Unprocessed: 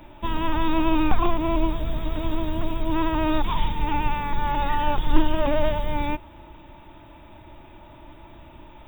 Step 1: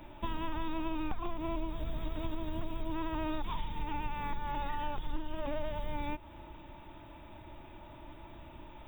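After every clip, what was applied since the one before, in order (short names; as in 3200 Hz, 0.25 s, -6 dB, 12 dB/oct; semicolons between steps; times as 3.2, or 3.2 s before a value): compressor 6:1, threshold -27 dBFS, peak gain reduction 17.5 dB; gain -4.5 dB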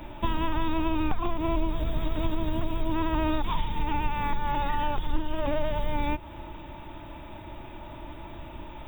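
octaver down 2 oct, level -6 dB; gain +8.5 dB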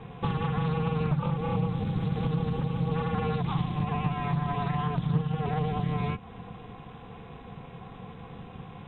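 ring modulator 150 Hz; air absorption 61 m; Doppler distortion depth 0.17 ms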